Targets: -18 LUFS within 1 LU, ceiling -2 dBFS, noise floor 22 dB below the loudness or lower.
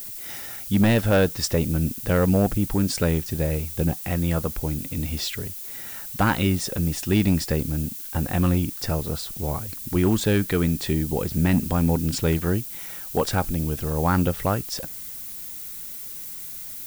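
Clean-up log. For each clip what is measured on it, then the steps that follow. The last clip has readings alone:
clipped samples 0.5%; clipping level -12.5 dBFS; noise floor -36 dBFS; noise floor target -47 dBFS; loudness -24.5 LUFS; peak level -12.5 dBFS; loudness target -18.0 LUFS
-> clip repair -12.5 dBFS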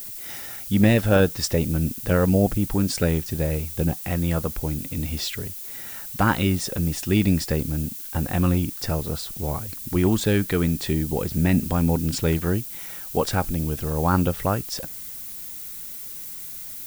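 clipped samples 0.0%; noise floor -36 dBFS; noise floor target -46 dBFS
-> noise reduction 10 dB, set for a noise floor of -36 dBFS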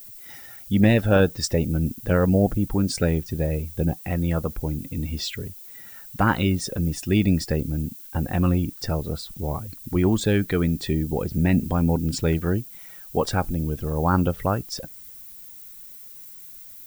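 noise floor -43 dBFS; noise floor target -46 dBFS
-> noise reduction 6 dB, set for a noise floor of -43 dBFS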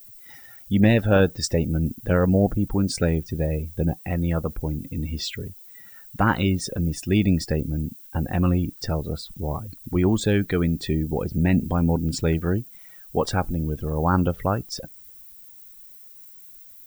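noise floor -46 dBFS; loudness -24.0 LUFS; peak level -5.0 dBFS; loudness target -18.0 LUFS
-> trim +6 dB; peak limiter -2 dBFS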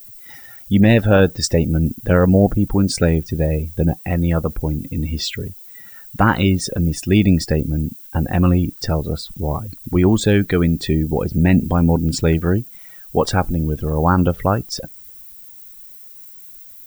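loudness -18.0 LUFS; peak level -2.0 dBFS; noise floor -40 dBFS

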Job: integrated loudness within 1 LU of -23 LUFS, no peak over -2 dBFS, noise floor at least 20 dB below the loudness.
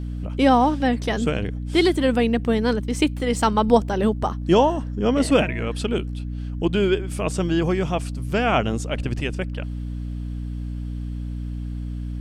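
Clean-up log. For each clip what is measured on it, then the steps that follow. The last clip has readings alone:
hum 60 Hz; highest harmonic 300 Hz; hum level -26 dBFS; loudness -22.5 LUFS; peak level -4.0 dBFS; loudness target -23.0 LUFS
-> de-hum 60 Hz, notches 5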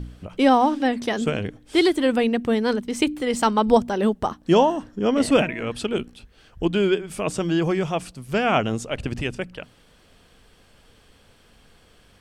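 hum not found; loudness -22.0 LUFS; peak level -4.0 dBFS; loudness target -23.0 LUFS
-> trim -1 dB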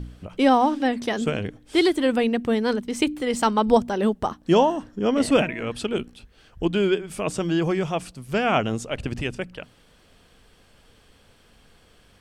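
loudness -23.0 LUFS; peak level -5.0 dBFS; noise floor -57 dBFS

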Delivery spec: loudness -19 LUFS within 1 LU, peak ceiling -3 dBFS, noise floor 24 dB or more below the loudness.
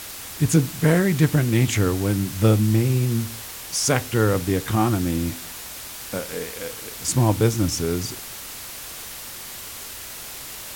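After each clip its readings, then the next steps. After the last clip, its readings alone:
noise floor -36 dBFS; noise floor target -46 dBFS; loudness -22.0 LUFS; peak level -5.5 dBFS; loudness target -19.0 LUFS
-> noise reduction 10 dB, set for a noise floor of -36 dBFS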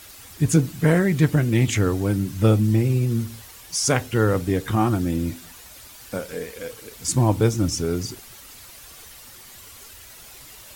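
noise floor -44 dBFS; noise floor target -46 dBFS
-> noise reduction 6 dB, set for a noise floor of -44 dBFS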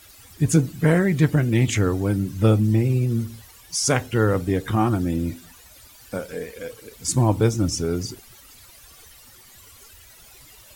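noise floor -49 dBFS; loudness -21.5 LUFS; peak level -6.0 dBFS; loudness target -19.0 LUFS
-> trim +2.5 dB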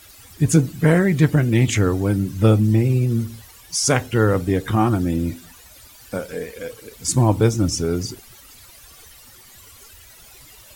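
loudness -19.0 LUFS; peak level -3.5 dBFS; noise floor -46 dBFS

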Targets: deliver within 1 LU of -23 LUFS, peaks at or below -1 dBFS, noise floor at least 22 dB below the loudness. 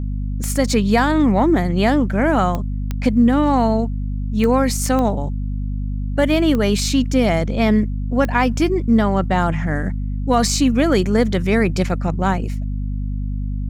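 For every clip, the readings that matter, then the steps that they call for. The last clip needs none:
clicks found 7; hum 50 Hz; highest harmonic 250 Hz; hum level -20 dBFS; loudness -18.5 LUFS; peak level -3.5 dBFS; loudness target -23.0 LUFS
-> de-click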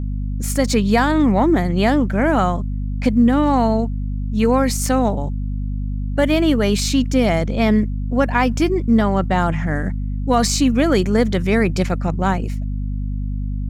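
clicks found 0; hum 50 Hz; highest harmonic 250 Hz; hum level -20 dBFS
-> de-hum 50 Hz, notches 5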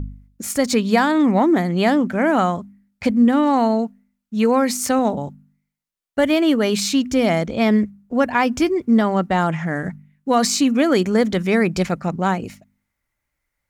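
hum not found; loudness -18.5 LUFS; peak level -4.5 dBFS; loudness target -23.0 LUFS
-> trim -4.5 dB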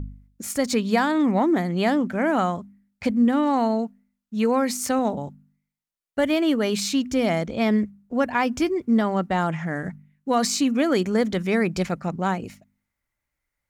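loudness -23.0 LUFS; peak level -9.0 dBFS; noise floor -83 dBFS

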